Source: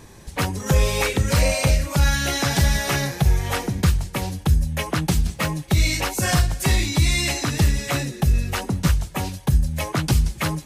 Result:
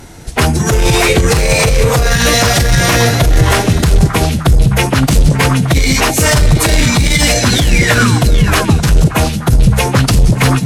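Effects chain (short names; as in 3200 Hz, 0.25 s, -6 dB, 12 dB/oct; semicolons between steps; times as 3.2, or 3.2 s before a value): painted sound fall, 7.5–8.19, 900–4300 Hz -27 dBFS; delay with a stepping band-pass 0.19 s, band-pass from 180 Hz, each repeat 1.4 oct, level -1.5 dB; formant-preserving pitch shift -3 st; in parallel at -7 dB: wavefolder -20.5 dBFS; on the sum: maximiser +14.5 dB; upward expander 1.5:1, over -17 dBFS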